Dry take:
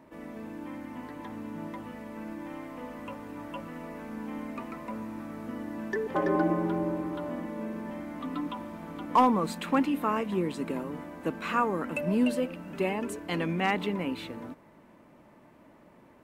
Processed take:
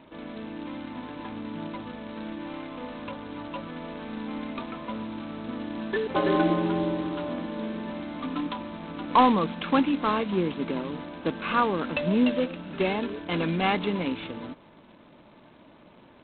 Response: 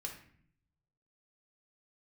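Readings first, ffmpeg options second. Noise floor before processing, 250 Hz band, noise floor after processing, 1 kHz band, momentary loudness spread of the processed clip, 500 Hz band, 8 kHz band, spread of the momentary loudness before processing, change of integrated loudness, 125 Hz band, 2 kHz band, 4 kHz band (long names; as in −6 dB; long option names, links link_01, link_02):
−57 dBFS, +3.0 dB, −54 dBFS, +3.0 dB, 14 LU, +3.0 dB, below −30 dB, 15 LU, +3.0 dB, +3.0 dB, +3.0 dB, +7.0 dB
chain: -af "asuperstop=centerf=1900:order=20:qfactor=7.8,volume=3dB" -ar 8000 -c:a adpcm_g726 -b:a 16k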